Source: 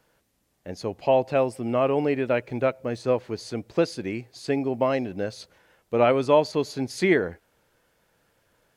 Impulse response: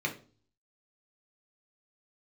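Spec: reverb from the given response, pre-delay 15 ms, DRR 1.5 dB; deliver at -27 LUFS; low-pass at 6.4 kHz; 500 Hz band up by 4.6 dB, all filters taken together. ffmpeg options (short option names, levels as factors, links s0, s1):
-filter_complex "[0:a]lowpass=6400,equalizer=f=500:t=o:g=5.5,asplit=2[s0][s1];[1:a]atrim=start_sample=2205,adelay=15[s2];[s1][s2]afir=irnorm=-1:irlink=0,volume=0.398[s3];[s0][s3]amix=inputs=2:normalize=0,volume=0.398"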